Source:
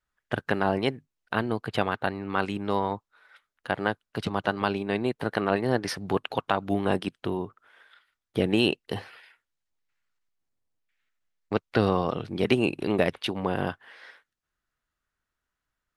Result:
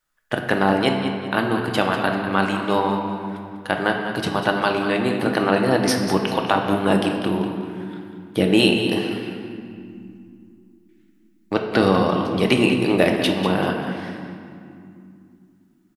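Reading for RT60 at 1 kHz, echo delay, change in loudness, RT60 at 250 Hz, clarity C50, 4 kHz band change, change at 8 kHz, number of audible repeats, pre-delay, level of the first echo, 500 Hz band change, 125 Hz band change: 2.4 s, 195 ms, +7.0 dB, 4.0 s, 3.5 dB, +9.0 dB, +12.0 dB, 2, 3 ms, -10.5 dB, +7.0 dB, +6.5 dB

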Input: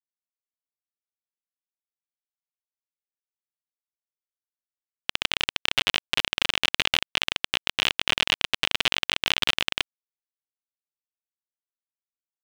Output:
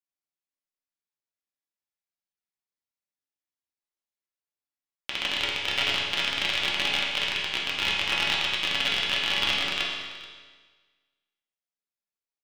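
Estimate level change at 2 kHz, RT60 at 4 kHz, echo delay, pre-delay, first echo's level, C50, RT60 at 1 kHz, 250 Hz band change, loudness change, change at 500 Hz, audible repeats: 0.0 dB, 1.5 s, 431 ms, 4 ms, -17.0 dB, 1.0 dB, 1.6 s, -0.5 dB, -0.5 dB, 0.0 dB, 1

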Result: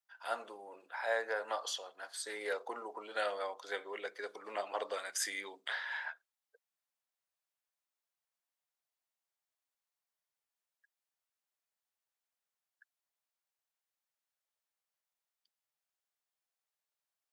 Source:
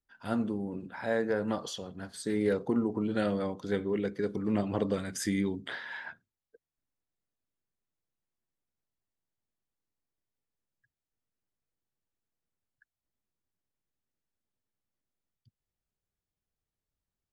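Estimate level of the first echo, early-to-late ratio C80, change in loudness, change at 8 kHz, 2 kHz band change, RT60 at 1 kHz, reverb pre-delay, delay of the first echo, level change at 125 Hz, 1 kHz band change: no echo, no reverb, -7.0 dB, +1.0 dB, +1.0 dB, no reverb, no reverb, no echo, under -40 dB, +0.5 dB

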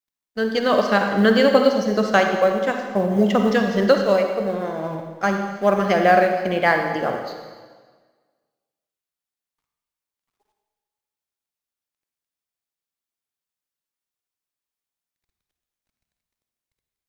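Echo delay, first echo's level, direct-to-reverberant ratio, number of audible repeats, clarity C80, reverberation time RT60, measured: no echo, no echo, 4.0 dB, no echo, 6.0 dB, 1.5 s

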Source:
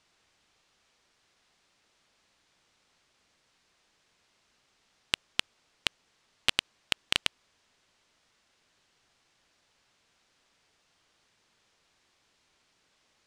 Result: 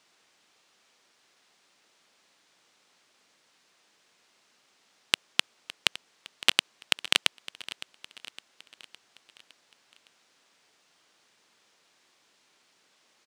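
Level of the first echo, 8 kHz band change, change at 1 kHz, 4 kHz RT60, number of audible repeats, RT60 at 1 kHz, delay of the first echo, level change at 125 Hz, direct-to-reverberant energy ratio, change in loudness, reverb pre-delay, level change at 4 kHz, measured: -17.0 dB, +5.5 dB, +4.0 dB, no reverb, 4, no reverb, 561 ms, -4.0 dB, no reverb, +3.5 dB, no reverb, +4.5 dB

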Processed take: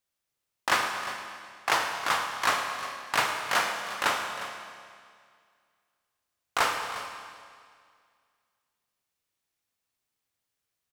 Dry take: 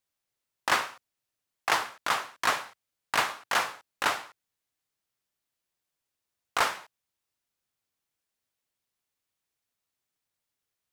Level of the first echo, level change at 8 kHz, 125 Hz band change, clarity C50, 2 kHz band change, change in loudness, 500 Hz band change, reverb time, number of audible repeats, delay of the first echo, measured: -14.0 dB, +1.5 dB, +2.5 dB, 4.0 dB, +1.5 dB, +0.5 dB, +2.0 dB, 2.1 s, 1, 355 ms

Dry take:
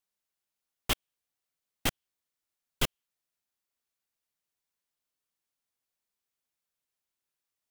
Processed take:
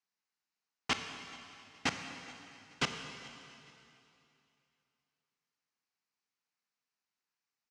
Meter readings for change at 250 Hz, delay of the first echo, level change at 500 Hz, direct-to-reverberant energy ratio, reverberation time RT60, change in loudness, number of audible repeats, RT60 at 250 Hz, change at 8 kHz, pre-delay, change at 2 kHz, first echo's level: -1.0 dB, 426 ms, -4.0 dB, 6.0 dB, 2.8 s, -5.0 dB, 2, 2.7 s, -5.5 dB, 22 ms, +1.0 dB, -22.5 dB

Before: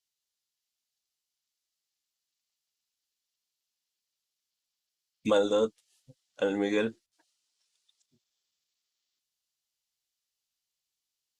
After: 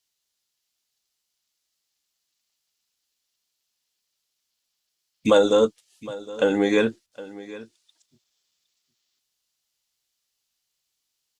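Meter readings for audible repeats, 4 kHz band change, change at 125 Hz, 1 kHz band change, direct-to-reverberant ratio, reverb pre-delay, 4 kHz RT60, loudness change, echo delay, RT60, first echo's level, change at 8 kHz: 1, +8.0 dB, +8.0 dB, +8.0 dB, no reverb, no reverb, no reverb, +8.0 dB, 763 ms, no reverb, -18.0 dB, +8.0 dB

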